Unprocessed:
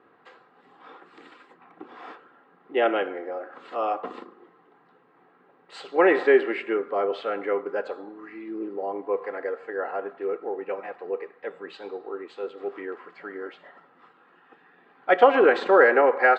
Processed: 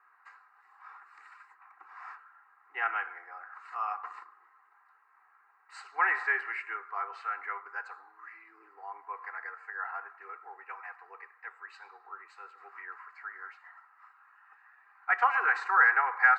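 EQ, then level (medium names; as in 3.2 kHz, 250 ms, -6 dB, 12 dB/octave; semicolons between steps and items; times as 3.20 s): high-pass 780 Hz 24 dB/octave; static phaser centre 1.4 kHz, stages 4; 0.0 dB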